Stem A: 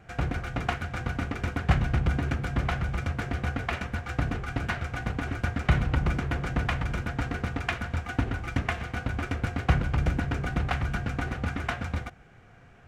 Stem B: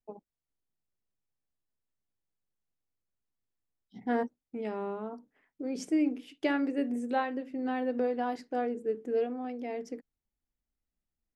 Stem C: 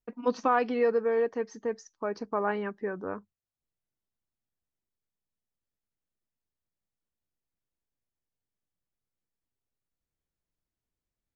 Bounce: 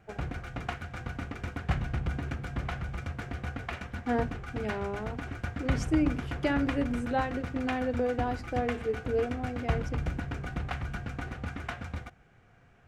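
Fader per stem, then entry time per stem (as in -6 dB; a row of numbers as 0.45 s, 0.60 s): -6.5 dB, +0.5 dB, mute; 0.00 s, 0.00 s, mute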